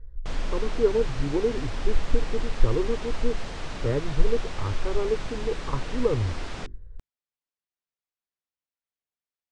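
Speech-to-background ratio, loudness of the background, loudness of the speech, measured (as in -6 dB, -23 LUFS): 8.5 dB, -37.5 LUFS, -29.0 LUFS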